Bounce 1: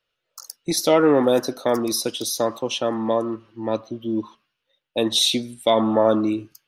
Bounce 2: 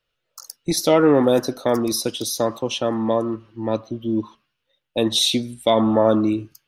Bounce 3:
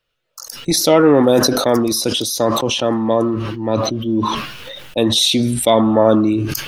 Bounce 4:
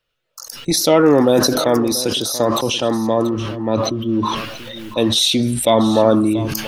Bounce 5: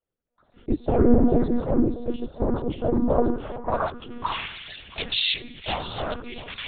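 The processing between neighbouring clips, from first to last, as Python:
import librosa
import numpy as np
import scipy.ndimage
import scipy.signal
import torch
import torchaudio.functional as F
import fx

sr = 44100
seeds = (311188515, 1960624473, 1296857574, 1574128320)

y1 = fx.low_shelf(x, sr, hz=150.0, db=9.5)
y2 = fx.sustainer(y1, sr, db_per_s=30.0)
y2 = y2 * 10.0 ** (3.5 / 20.0)
y3 = y2 + 10.0 ** (-15.0 / 20.0) * np.pad(y2, (int(684 * sr / 1000.0), 0))[:len(y2)]
y3 = y3 * 10.0 ** (-1.0 / 20.0)
y4 = fx.filter_sweep_bandpass(y3, sr, from_hz=230.0, to_hz=2700.0, start_s=2.73, end_s=4.53, q=1.3)
y4 = fx.noise_vocoder(y4, sr, seeds[0], bands=16)
y4 = fx.lpc_monotone(y4, sr, seeds[1], pitch_hz=240.0, order=10)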